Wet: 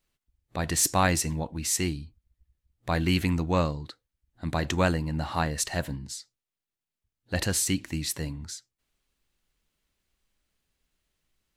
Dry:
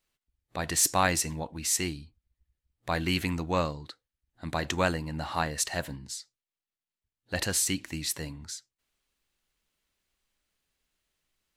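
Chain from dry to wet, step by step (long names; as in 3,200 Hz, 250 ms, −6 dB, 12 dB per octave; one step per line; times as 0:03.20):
low-shelf EQ 320 Hz +7 dB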